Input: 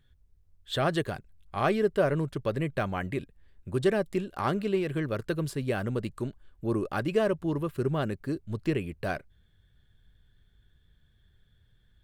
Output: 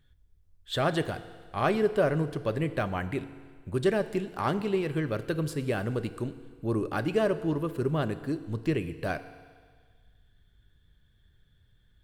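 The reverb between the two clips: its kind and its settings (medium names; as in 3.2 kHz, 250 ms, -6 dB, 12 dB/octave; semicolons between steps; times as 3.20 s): FDN reverb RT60 1.7 s, low-frequency decay 0.85×, high-frequency decay 1×, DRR 11.5 dB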